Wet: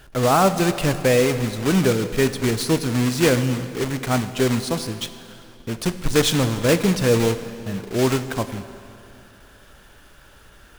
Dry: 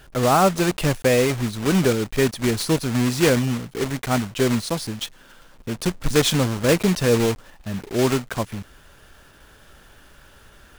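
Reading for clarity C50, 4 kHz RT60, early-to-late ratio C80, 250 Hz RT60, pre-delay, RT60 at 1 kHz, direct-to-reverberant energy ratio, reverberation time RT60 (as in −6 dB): 11.5 dB, 2.2 s, 12.0 dB, 2.6 s, 3 ms, 2.6 s, 10.0 dB, 2.6 s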